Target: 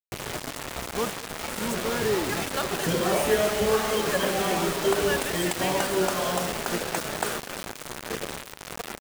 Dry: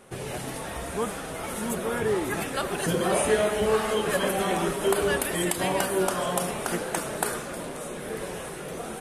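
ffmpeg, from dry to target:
-filter_complex "[0:a]lowpass=f=8k:w=0.5412,lowpass=f=8k:w=1.3066,acrusher=bits=4:mix=0:aa=0.000001,asplit=2[a][b];[b]aecho=0:1:209:0.106[c];[a][c]amix=inputs=2:normalize=0"

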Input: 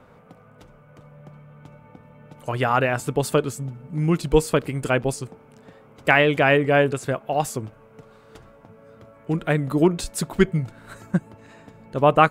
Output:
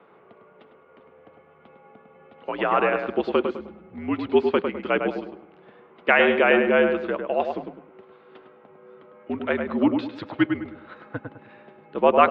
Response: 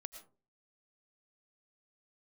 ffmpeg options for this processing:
-filter_complex "[0:a]highpass=f=290:t=q:w=0.5412,highpass=f=290:t=q:w=1.307,lowpass=f=3.6k:t=q:w=0.5176,lowpass=f=3.6k:t=q:w=0.7071,lowpass=f=3.6k:t=q:w=1.932,afreqshift=-64,asplit=2[a][b];[b]adelay=103,lowpass=f=1.9k:p=1,volume=-5dB,asplit=2[c][d];[d]adelay=103,lowpass=f=1.9k:p=1,volume=0.37,asplit=2[e][f];[f]adelay=103,lowpass=f=1.9k:p=1,volume=0.37,asplit=2[g][h];[h]adelay=103,lowpass=f=1.9k:p=1,volume=0.37,asplit=2[i][j];[j]adelay=103,lowpass=f=1.9k:p=1,volume=0.37[k];[a][c][e][g][i][k]amix=inputs=6:normalize=0,volume=-1dB"

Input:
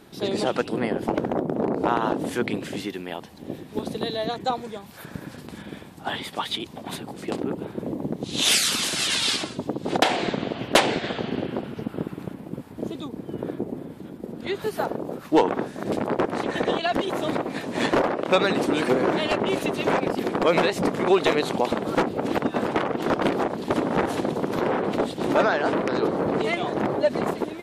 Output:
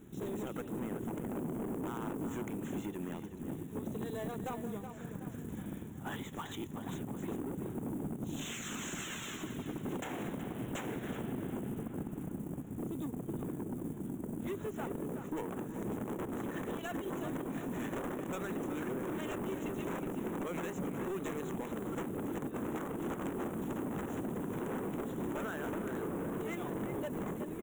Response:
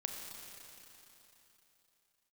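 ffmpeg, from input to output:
-filter_complex "[0:a]asplit=2[a][b];[b]adynamicsmooth=sensitivity=2:basefreq=750,volume=3dB[c];[a][c]amix=inputs=2:normalize=0,equalizer=f=660:t=o:w=1.2:g=-11,acompressor=threshold=-25dB:ratio=5,aresample=16000,asoftclip=type=hard:threshold=-27.5dB,aresample=44100,acrusher=bits=6:mode=log:mix=0:aa=0.000001,asuperstop=centerf=4700:order=4:qfactor=0.8,highshelf=f=3.3k:t=q:w=1.5:g=10,asplit=2[d][e];[e]adelay=372,lowpass=f=3.5k:p=1,volume=-8.5dB,asplit=2[f][g];[g]adelay=372,lowpass=f=3.5k:p=1,volume=0.48,asplit=2[h][i];[i]adelay=372,lowpass=f=3.5k:p=1,volume=0.48,asplit=2[j][k];[k]adelay=372,lowpass=f=3.5k:p=1,volume=0.48,asplit=2[l][m];[m]adelay=372,lowpass=f=3.5k:p=1,volume=0.48[n];[d][f][h][j][l][n]amix=inputs=6:normalize=0,volume=-7.5dB"

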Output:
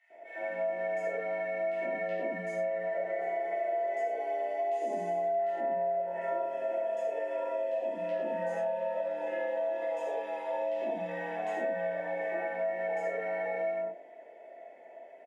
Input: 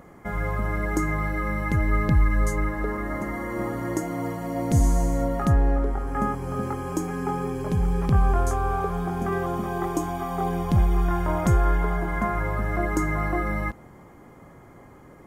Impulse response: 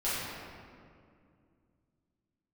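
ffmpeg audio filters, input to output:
-filter_complex "[0:a]asplit=3[a][b][c];[a]bandpass=f=530:t=q:w=8,volume=0dB[d];[b]bandpass=f=1.84k:t=q:w=8,volume=-6dB[e];[c]bandpass=f=2.48k:t=q:w=8,volume=-9dB[f];[d][e][f]amix=inputs=3:normalize=0,acrossover=split=1200[g][h];[g]adelay=100[i];[i][h]amix=inputs=2:normalize=0[j];[1:a]atrim=start_sample=2205,atrim=end_sample=3528,asetrate=26019,aresample=44100[k];[j][k]afir=irnorm=-1:irlink=0,afreqshift=130,acompressor=threshold=-29dB:ratio=6"

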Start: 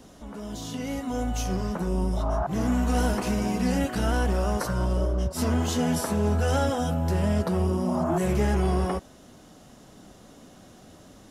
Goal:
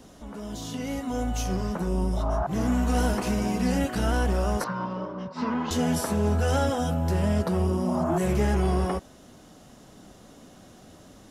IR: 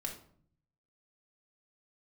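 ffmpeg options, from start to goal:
-filter_complex "[0:a]asettb=1/sr,asplit=3[a][b][c];[a]atrim=end=4.644[d];[b]atrim=start=4.64:end=5.71,asetpts=PTS-STARTPTS,afade=t=in:d=0.004:c=qsin,afade=t=out:st=1.066:d=0.004:c=qsin,highpass=f=160:w=0.5412,highpass=f=160:w=1.3066,equalizer=f=370:t=q:w=4:g=-9,equalizer=f=660:t=q:w=4:g=-9,equalizer=f=1k:t=q:w=4:g=8,equalizer=f=3.2k:t=q:w=4:g=-6,lowpass=f=4k:w=0.5412,lowpass=f=4k:w=1.3066[e];[c]atrim=start=5.706[f];[d][e]acrossfade=d=0.004:c1=hsin:c2=qsin[g];[g][f]acrossfade=d=0.004:c1=qsin:c2=hsin"

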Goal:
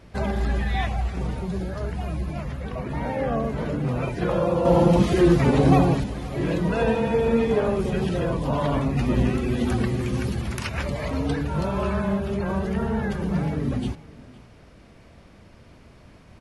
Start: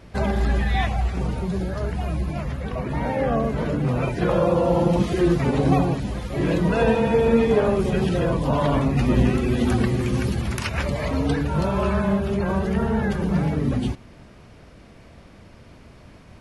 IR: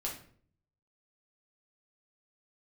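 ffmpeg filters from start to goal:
-filter_complex "[0:a]asettb=1/sr,asplit=3[a][b][c];[a]atrim=end=4.654[d];[b]atrim=start=4.65:end=6.04,asetpts=PTS-STARTPTS,afade=t=in:d=0.004:c=qsin,afade=t=out:st=1.386:d=0.004:c=qsin,acontrast=44[e];[c]atrim=start=6.036[f];[d][e]acrossfade=d=0.004:c1=hsin:c2=qsin[g];[g][f]acrossfade=d=0.004:c1=qsin:c2=hsin,aecho=1:1:512:0.0891,volume=-3dB"

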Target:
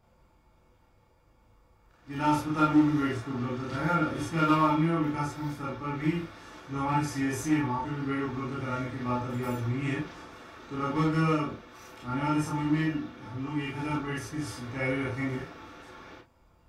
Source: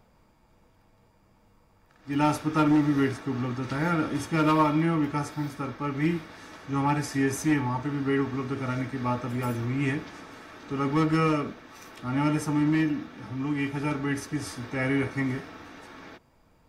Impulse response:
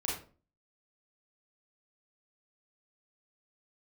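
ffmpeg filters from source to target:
-filter_complex "[1:a]atrim=start_sample=2205,afade=t=out:st=0.16:d=0.01,atrim=end_sample=7497,asetrate=52920,aresample=44100[a];[0:a][a]afir=irnorm=-1:irlink=0,volume=-4.5dB"

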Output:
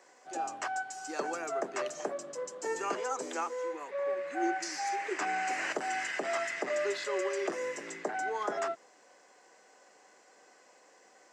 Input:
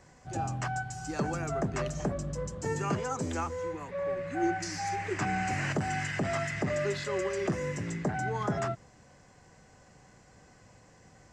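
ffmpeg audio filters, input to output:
-af "highpass=f=350:w=0.5412,highpass=f=350:w=1.3066"

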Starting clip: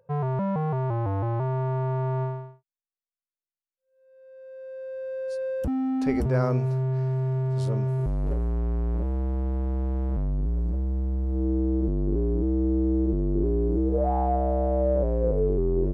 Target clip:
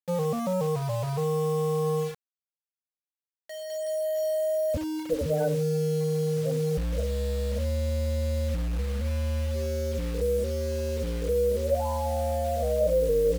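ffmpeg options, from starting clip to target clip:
-filter_complex "[0:a]areverse,acompressor=threshold=-36dB:ratio=5,areverse,superequalizer=6b=0.398:7b=3.16,afftfilt=real='re*gte(hypot(re,im),0.0282)':imag='im*gte(hypot(re,im),0.0282)':win_size=1024:overlap=0.75,asplit=2[a][b];[b]aecho=0:1:79:0.133[c];[a][c]amix=inputs=2:normalize=0,acrusher=bits=7:mix=0:aa=0.000001,asetrate=52479,aresample=44100,volume=7dB"

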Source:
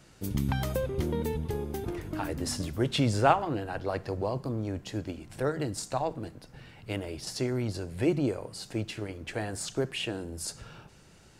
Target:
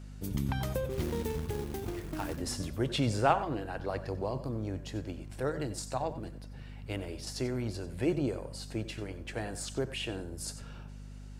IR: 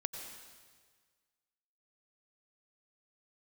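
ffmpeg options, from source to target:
-filter_complex "[0:a]asplit=3[a][b][c];[a]afade=t=out:st=0.89:d=0.02[d];[b]acrusher=bits=3:mode=log:mix=0:aa=0.000001,afade=t=in:st=0.89:d=0.02,afade=t=out:st=2.36:d=0.02[e];[c]afade=t=in:st=2.36:d=0.02[f];[d][e][f]amix=inputs=3:normalize=0,aeval=exprs='val(0)+0.00891*(sin(2*PI*50*n/s)+sin(2*PI*2*50*n/s)/2+sin(2*PI*3*50*n/s)/3+sin(2*PI*4*50*n/s)/4+sin(2*PI*5*50*n/s)/5)':c=same[g];[1:a]atrim=start_sample=2205,atrim=end_sample=4410[h];[g][h]afir=irnorm=-1:irlink=0,volume=-2.5dB"

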